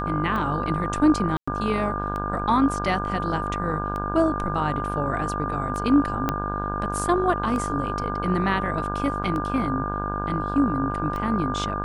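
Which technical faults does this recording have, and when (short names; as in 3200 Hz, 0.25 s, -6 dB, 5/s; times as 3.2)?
buzz 50 Hz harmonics 33 -30 dBFS
tick 33 1/3 rpm -19 dBFS
tone 1200 Hz -29 dBFS
1.37–1.48 gap 0.105 s
6.29 pop -9 dBFS
9.23–9.24 gap 7.7 ms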